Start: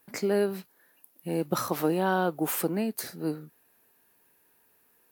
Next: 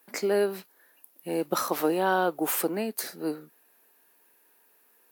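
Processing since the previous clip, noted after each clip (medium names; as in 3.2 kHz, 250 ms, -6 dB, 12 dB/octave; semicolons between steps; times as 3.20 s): high-pass 300 Hz 12 dB/octave; trim +2.5 dB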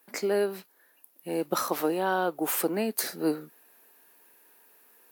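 gain riding within 4 dB 0.5 s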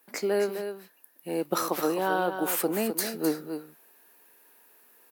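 delay 258 ms -8.5 dB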